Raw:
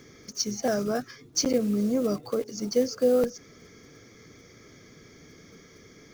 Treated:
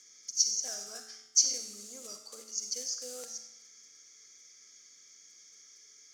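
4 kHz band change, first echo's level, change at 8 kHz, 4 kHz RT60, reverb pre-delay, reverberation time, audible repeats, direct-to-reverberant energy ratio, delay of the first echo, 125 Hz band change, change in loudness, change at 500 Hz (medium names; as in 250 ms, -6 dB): +1.0 dB, no echo, +5.5 dB, 0.80 s, 38 ms, 0.90 s, no echo, 5.0 dB, no echo, under -30 dB, -4.5 dB, -25.0 dB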